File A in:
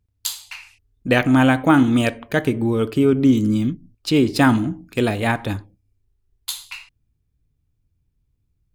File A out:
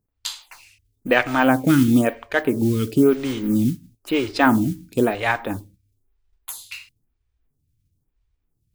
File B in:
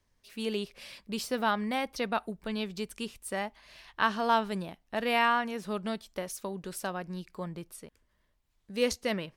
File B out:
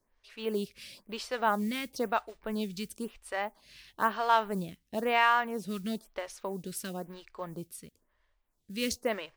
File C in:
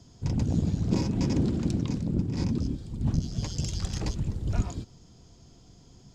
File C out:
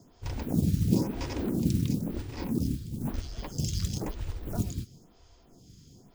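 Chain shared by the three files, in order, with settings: modulation noise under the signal 22 dB; photocell phaser 1 Hz; gain +2 dB

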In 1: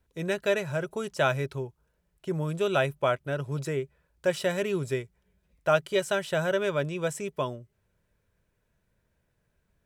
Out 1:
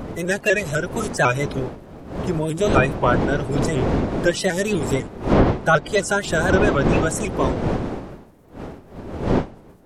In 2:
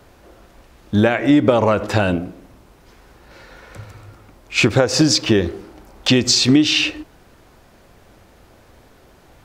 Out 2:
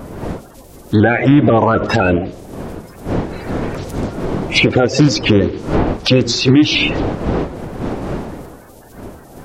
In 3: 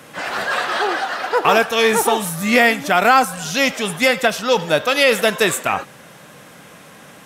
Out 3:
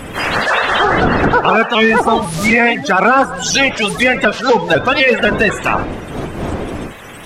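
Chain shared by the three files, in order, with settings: bin magnitudes rounded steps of 30 dB; wind noise 420 Hz -31 dBFS; treble ducked by the level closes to 2200 Hz, closed at -14.5 dBFS; high shelf 5600 Hz +11.5 dB; maximiser +8 dB; shaped vibrato saw up 4 Hz, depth 100 cents; gain -1 dB

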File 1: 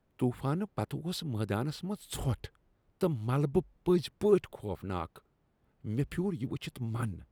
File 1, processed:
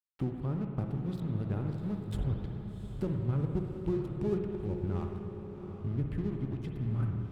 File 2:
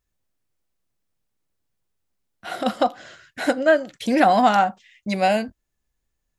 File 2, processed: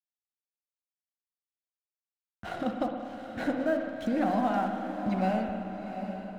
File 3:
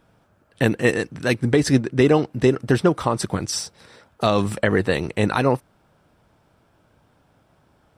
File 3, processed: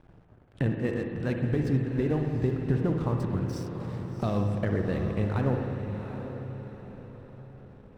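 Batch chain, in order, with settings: RIAA curve playback; compressor 2:1, threshold -40 dBFS; crossover distortion -50 dBFS; diffused feedback echo 0.747 s, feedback 40%, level -8.5 dB; spring tank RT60 2 s, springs 53/59 ms, chirp 50 ms, DRR 3.5 dB; gain +1 dB

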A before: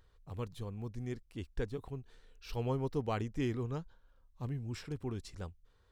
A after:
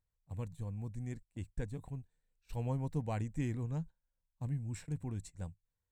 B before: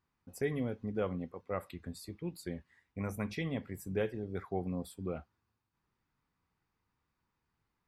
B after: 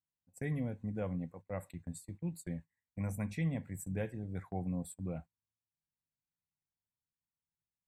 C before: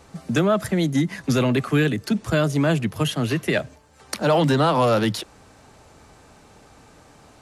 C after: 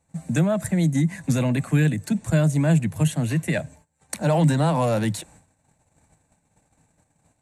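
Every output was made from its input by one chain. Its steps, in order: gate -47 dBFS, range -19 dB; thirty-one-band EQ 100 Hz +5 dB, 160 Hz +8 dB, 400 Hz -11 dB, 1250 Hz -11 dB, 3150 Hz -9 dB, 5000 Hz -11 dB, 8000 Hz +12 dB; gain -2 dB

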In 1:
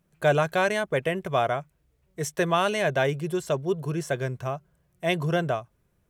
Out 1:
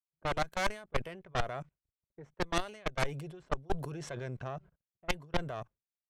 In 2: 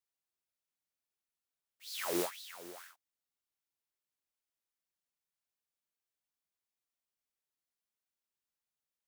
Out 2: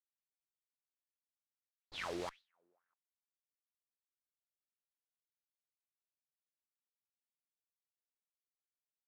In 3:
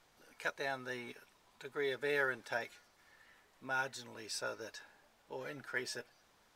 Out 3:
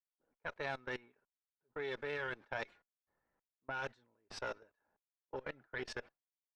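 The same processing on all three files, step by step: level quantiser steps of 22 dB; expander -55 dBFS; added harmonics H 3 -26 dB, 6 -8 dB, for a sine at -11 dBFS; reverse; compressor 10:1, threshold -34 dBFS; reverse; low-pass opened by the level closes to 880 Hz, open at -37 dBFS; gain +5.5 dB

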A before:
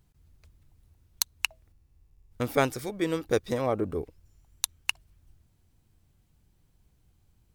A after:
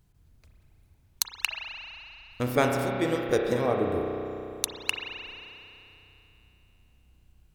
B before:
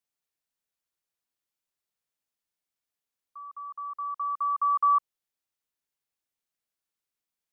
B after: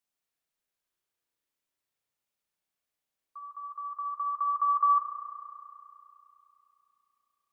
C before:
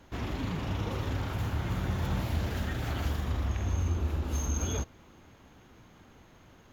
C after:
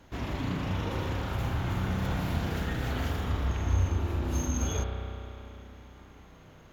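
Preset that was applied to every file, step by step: spring tank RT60 3.1 s, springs 32 ms, chirp 30 ms, DRR 1 dB

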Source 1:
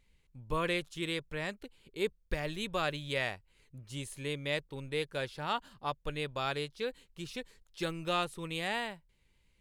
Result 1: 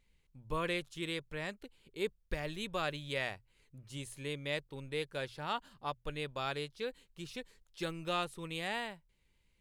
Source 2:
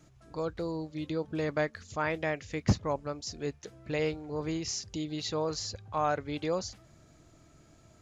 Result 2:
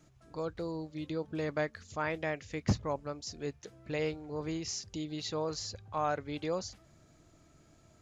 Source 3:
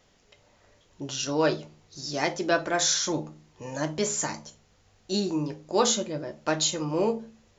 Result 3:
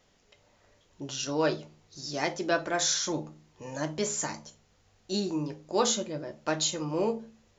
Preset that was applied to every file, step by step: notches 60/120 Hz; gain -3 dB

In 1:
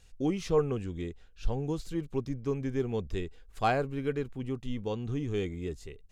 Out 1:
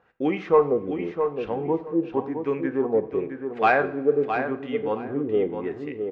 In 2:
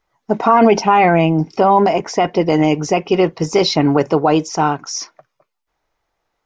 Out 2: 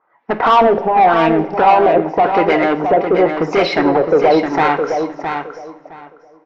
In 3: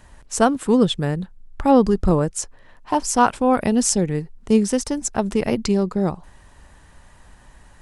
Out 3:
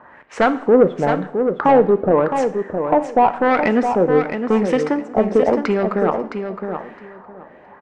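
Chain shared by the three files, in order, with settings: HPF 300 Hz 12 dB/oct; in parallel at +2 dB: compressor, threshold -23 dBFS; on the sum: hard clip -11 dBFS; LFO low-pass sine 0.9 Hz 540–2300 Hz; soft clip -7 dBFS; on a send: feedback echo 0.664 s, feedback 20%, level -7 dB; on the sum: two-slope reverb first 0.57 s, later 3.2 s, from -18 dB, DRR 10.5 dB; mismatched tape noise reduction decoder only; gain +1.5 dB

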